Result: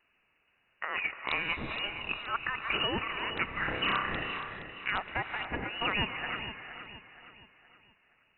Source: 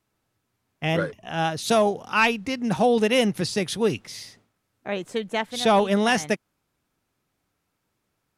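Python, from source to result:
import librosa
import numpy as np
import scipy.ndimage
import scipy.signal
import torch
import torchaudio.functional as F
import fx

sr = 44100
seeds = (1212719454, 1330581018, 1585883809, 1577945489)

p1 = fx.self_delay(x, sr, depth_ms=0.16, at=(0.96, 1.78))
p2 = scipy.signal.sosfilt(scipy.signal.cheby1(10, 1.0, 980.0, 'highpass', fs=sr, output='sos'), p1)
p3 = fx.over_compress(p2, sr, threshold_db=-38.0, ratio=-1.0)
p4 = fx.room_flutter(p3, sr, wall_m=5.3, rt60_s=0.7, at=(3.48, 4.16))
p5 = (np.mod(10.0 ** (20.5 / 20.0) * p4 + 1.0, 2.0) - 1.0) / 10.0 ** (20.5 / 20.0)
p6 = p5 + fx.echo_feedback(p5, sr, ms=470, feedback_pct=42, wet_db=-11.0, dry=0)
p7 = fx.rev_gated(p6, sr, seeds[0], gate_ms=460, shape='rising', drr_db=9.0)
p8 = fx.freq_invert(p7, sr, carrier_hz=3900)
p9 = fx.band_squash(p8, sr, depth_pct=70, at=(2.34, 2.74))
y = F.gain(torch.from_numpy(p9), 4.0).numpy()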